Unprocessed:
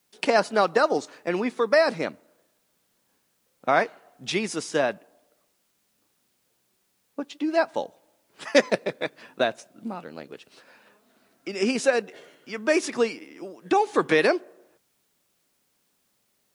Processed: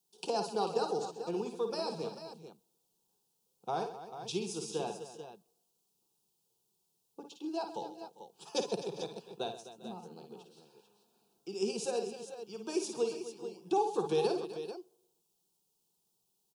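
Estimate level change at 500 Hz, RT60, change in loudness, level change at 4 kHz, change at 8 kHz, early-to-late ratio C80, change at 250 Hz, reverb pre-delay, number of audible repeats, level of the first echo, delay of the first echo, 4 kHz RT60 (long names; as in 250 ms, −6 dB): −11.0 dB, no reverb audible, −12.0 dB, −9.5 dB, −7.0 dB, no reverb audible, −11.0 dB, no reverb audible, 5, −8.5 dB, 53 ms, no reverb audible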